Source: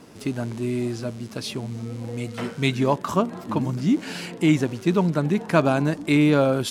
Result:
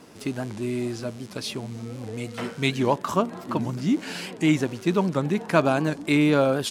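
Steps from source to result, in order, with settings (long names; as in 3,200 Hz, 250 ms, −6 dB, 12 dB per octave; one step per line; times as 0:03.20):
low-shelf EQ 240 Hz −5 dB
wow of a warped record 78 rpm, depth 160 cents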